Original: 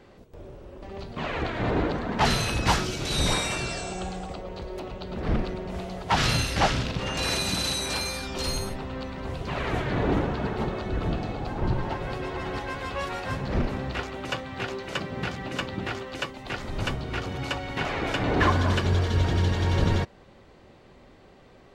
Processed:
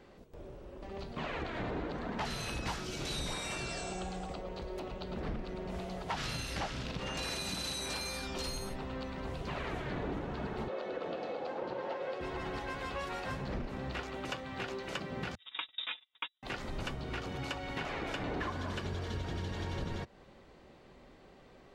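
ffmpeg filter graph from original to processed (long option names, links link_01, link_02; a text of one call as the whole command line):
ffmpeg -i in.wav -filter_complex "[0:a]asettb=1/sr,asplit=3[link_01][link_02][link_03];[link_01]atrim=end=10.684[link_04];[link_02]atrim=start=10.68:end=12.21,asetpts=PTS-STARTPTS,afade=type=in:duration=0.004:curve=qsin,afade=type=out:start_time=1.526:duration=0.004:curve=qsin,highpass=350,lowpass=5300,equalizer=frequency=520:width=4.6:gain=12[link_05];[link_03]atrim=start=12.206[link_06];[link_04][link_05]acrossfade=duration=0.004:curve1=hsin:curve2=qsin[link_07];[link_07][link_06]acrossfade=duration=0.004:curve1=qsin:curve2=hsin,asettb=1/sr,asplit=3[link_08][link_09][link_10];[link_08]atrim=end=15.354[link_11];[link_09]atrim=start=15.35:end=16.43,asetpts=PTS-STARTPTS,afade=type=in:duration=0.004:curve=qsin,afade=type=out:start_time=1.076:duration=0.004:curve=qsin,agate=range=-44dB:threshold=-32dB:ratio=16:release=100:detection=peak,aecho=1:1:5:0.62,atrim=end_sample=47628,lowpass=frequency=3300:width_type=q:width=0.5098,lowpass=frequency=3300:width_type=q:width=0.6013,lowpass=frequency=3300:width_type=q:width=0.9,lowpass=frequency=3300:width_type=q:width=2.563,afreqshift=-3900[link_12];[link_10]atrim=start=16.426[link_13];[link_11][link_12]acrossfade=duration=0.004:curve1=hsin:curve2=qsin[link_14];[link_14][link_13]acrossfade=duration=0.004:curve1=qsin:curve2=hsin,equalizer=frequency=99:width_type=o:width=0.41:gain=-6.5,acompressor=threshold=-30dB:ratio=6,volume=-4.5dB" out.wav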